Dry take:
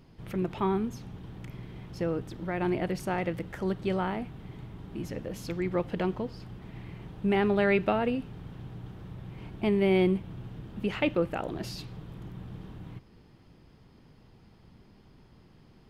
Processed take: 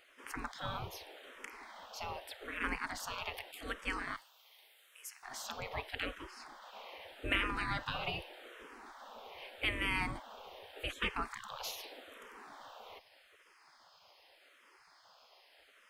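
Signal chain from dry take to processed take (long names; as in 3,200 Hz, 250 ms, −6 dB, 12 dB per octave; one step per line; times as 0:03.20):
gate on every frequency bin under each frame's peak −20 dB weak
0:04.16–0:05.23: first difference
frequency shifter mixed with the dry sound −0.83 Hz
level +8.5 dB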